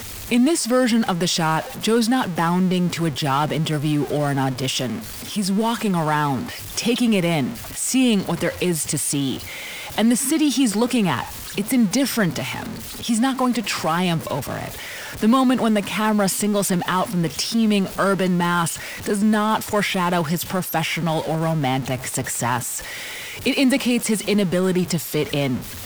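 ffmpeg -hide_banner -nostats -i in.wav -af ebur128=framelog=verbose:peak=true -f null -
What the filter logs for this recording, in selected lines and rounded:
Integrated loudness:
  I:         -21.0 LUFS
  Threshold: -31.0 LUFS
Loudness range:
  LRA:         2.3 LU
  Threshold: -41.1 LUFS
  LRA low:   -22.2 LUFS
  LRA high:  -19.9 LUFS
True peak:
  Peak:       -6.9 dBFS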